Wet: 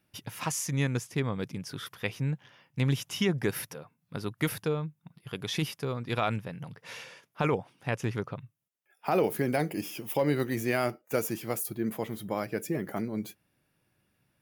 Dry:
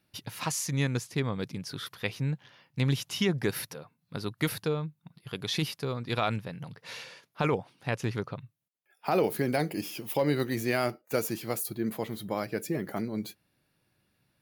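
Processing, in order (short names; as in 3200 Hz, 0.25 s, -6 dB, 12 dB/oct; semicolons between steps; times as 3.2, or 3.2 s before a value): bell 4200 Hz -8.5 dB 0.32 oct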